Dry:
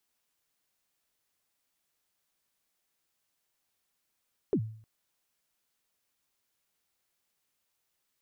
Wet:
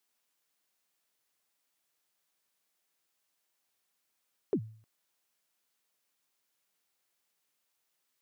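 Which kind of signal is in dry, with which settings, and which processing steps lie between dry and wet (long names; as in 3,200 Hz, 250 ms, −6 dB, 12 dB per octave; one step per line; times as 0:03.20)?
synth kick length 0.31 s, from 460 Hz, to 110 Hz, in 71 ms, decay 0.54 s, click off, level −21 dB
high-pass filter 220 Hz 6 dB per octave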